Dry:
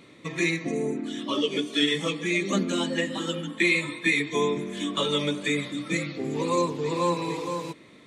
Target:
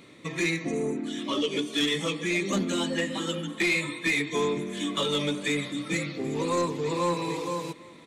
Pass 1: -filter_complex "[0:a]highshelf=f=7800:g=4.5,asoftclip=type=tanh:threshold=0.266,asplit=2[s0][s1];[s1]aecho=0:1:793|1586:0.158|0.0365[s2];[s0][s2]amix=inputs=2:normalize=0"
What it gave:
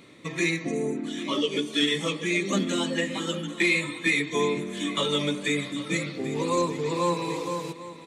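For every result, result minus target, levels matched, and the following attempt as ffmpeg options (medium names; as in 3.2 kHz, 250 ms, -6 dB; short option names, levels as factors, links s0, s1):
saturation: distortion -11 dB; echo-to-direct +8.5 dB
-filter_complex "[0:a]highshelf=f=7800:g=4.5,asoftclip=type=tanh:threshold=0.112,asplit=2[s0][s1];[s1]aecho=0:1:793|1586:0.158|0.0365[s2];[s0][s2]amix=inputs=2:normalize=0"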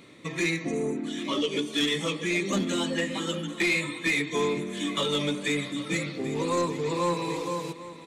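echo-to-direct +8.5 dB
-filter_complex "[0:a]highshelf=f=7800:g=4.5,asoftclip=type=tanh:threshold=0.112,asplit=2[s0][s1];[s1]aecho=0:1:793|1586:0.0596|0.0137[s2];[s0][s2]amix=inputs=2:normalize=0"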